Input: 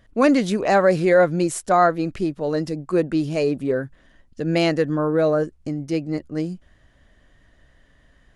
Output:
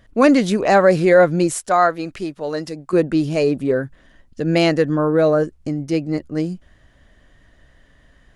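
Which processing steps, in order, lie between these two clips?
1.53–2.93 s: bass shelf 440 Hz -10 dB; trim +3.5 dB

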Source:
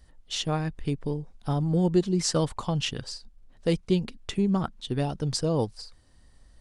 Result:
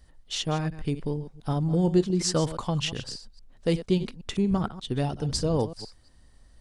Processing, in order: chunks repeated in reverse 117 ms, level -13 dB; 4.49–5.57 s: wind noise 120 Hz -39 dBFS

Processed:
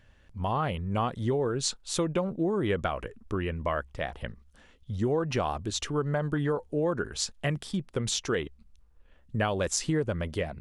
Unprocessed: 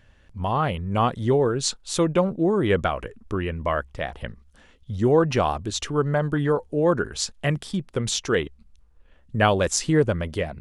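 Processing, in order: compression, threshold -20 dBFS, peak gain reduction 7.5 dB; trim -3.5 dB

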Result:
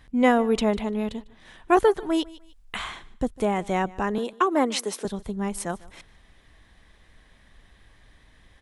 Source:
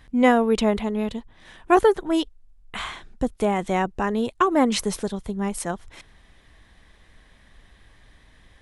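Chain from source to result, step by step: 4.18–5.05 s: high-pass 260 Hz 24 dB/octave; feedback delay 150 ms, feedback 21%, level -22 dB; 1.84–2.78 s: tape noise reduction on one side only encoder only; trim -2 dB

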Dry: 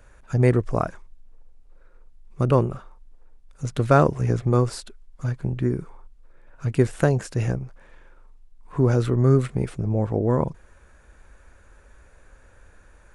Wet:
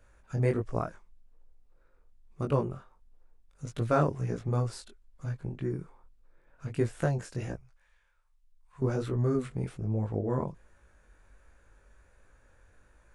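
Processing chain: 7.54–8.82 s: amplifier tone stack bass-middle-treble 10-0-10; chorus 1.3 Hz, delay 17.5 ms, depth 5.2 ms; trim -6 dB

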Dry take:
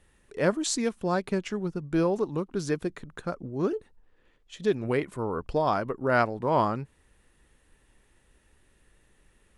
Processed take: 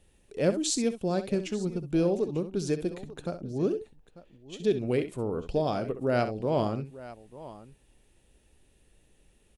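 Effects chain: high-order bell 1.4 kHz -8.5 dB 1.3 oct; multi-tap echo 65/893 ms -11.5/-18.5 dB; dynamic bell 910 Hz, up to -6 dB, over -42 dBFS, Q 2.1

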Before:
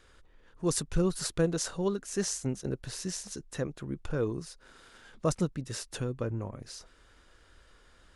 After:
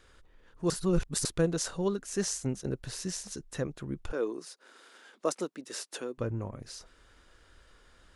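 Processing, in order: 0.70–1.25 s: reverse; 4.12–6.18 s: high-pass 280 Hz 24 dB/octave

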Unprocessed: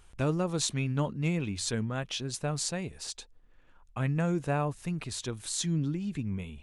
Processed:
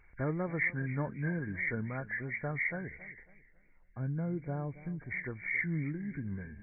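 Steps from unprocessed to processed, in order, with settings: knee-point frequency compression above 1.4 kHz 4:1; 2.97–5.11 s: peaking EQ 1.4 kHz -11 dB 2.3 oct; modulated delay 273 ms, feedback 36%, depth 90 cents, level -17.5 dB; trim -5 dB

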